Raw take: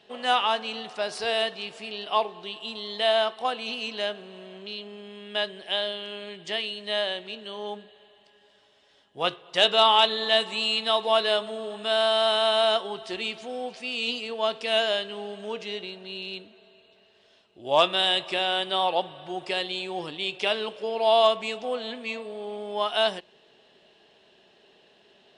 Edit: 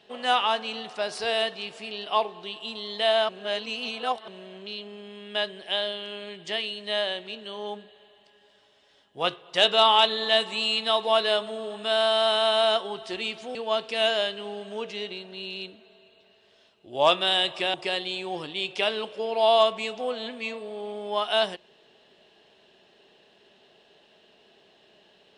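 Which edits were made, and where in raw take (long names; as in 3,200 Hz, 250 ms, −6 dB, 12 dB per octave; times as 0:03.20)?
0:03.29–0:04.28: reverse
0:13.55–0:14.27: remove
0:18.46–0:19.38: remove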